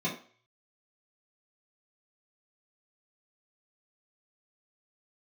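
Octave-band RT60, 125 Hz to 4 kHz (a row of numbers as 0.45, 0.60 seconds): 0.45, 0.35, 0.45, 0.45, 0.50, 0.40 seconds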